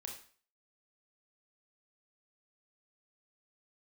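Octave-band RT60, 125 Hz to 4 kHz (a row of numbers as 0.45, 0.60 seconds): 0.40, 0.45, 0.45, 0.45, 0.45, 0.45 seconds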